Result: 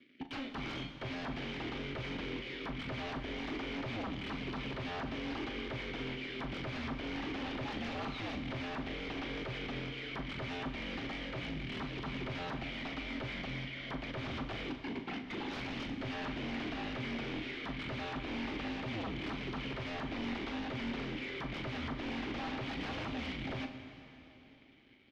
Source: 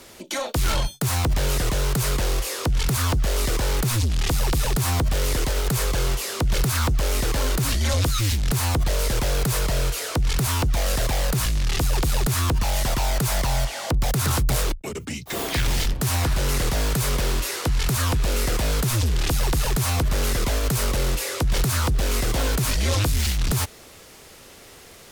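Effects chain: high-pass 40 Hz 12 dB/octave; treble shelf 9.3 kHz -9 dB; in parallel at -2 dB: compression, threshold -32 dBFS, peak gain reduction 13 dB; on the sum: crossover distortion -39.5 dBFS; vowel filter i; wavefolder -39.5 dBFS; distance through air 260 m; doubling 39 ms -10 dB; on a send at -7.5 dB: reverberation RT60 3.4 s, pre-delay 6 ms; on the sum: trim +6 dB

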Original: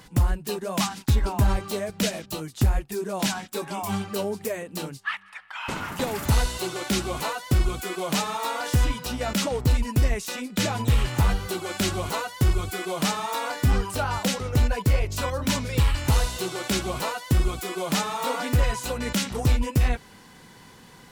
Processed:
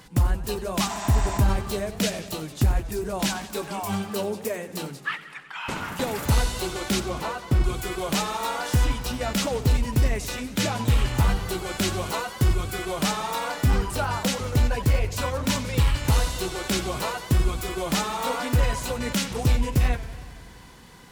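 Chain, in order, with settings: 0.91–1.35 s: spectral replace 610–8600 Hz after; 7.00–7.64 s: treble shelf 3.1 kHz -10 dB; modulated delay 92 ms, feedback 74%, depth 148 cents, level -15.5 dB

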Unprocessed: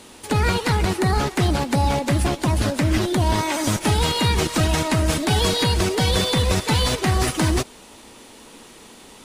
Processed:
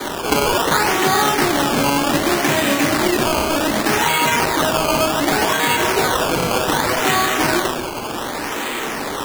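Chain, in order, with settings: 1.60–3.91 s: comb filter that takes the minimum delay 0.4 ms; high-pass 140 Hz; tilt EQ +4 dB/octave; band-stop 1 kHz, Q 18; reverberation RT60 0.80 s, pre-delay 3 ms, DRR -14 dB; compression 3:1, threshold -8 dBFS, peak gain reduction 9 dB; Bessel low-pass 2.1 kHz, order 4; decimation with a swept rate 16×, swing 100% 0.66 Hz; bass shelf 410 Hz -6 dB; three bands compressed up and down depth 70%

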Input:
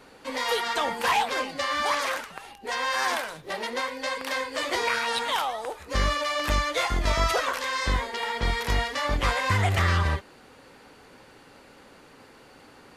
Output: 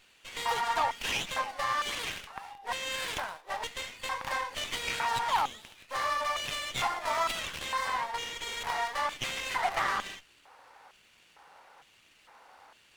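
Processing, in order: LFO high-pass square 1.1 Hz 830–2900 Hz; sliding maximum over 5 samples; trim -5.5 dB

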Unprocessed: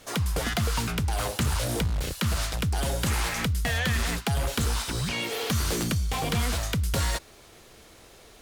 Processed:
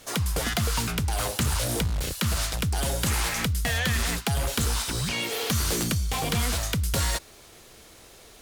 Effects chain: treble shelf 4.3 kHz +5 dB

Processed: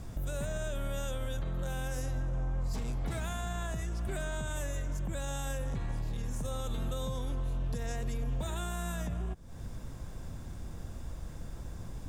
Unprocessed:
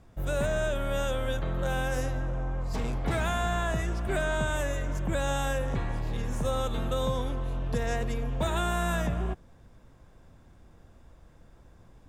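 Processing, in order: tone controls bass +6 dB, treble +9 dB; compression 12:1, threshold -37 dBFS, peak gain reduction 18 dB; peak limiter -34.5 dBFS, peak gain reduction 5.5 dB; trim +7.5 dB

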